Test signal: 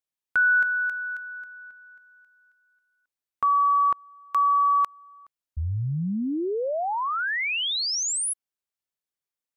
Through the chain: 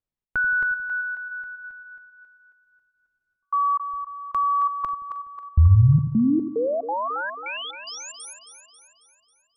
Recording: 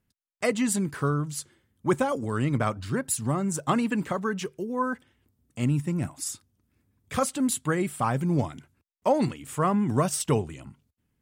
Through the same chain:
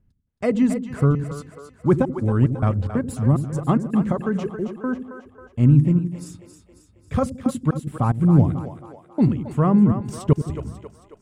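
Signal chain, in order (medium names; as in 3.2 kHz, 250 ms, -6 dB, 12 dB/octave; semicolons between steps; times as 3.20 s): tilt EQ -4 dB/octave; trance gate "xxx.xxxxx..xxx.." 183 bpm -60 dB; on a send: two-band feedback delay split 390 Hz, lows 86 ms, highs 271 ms, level -9 dB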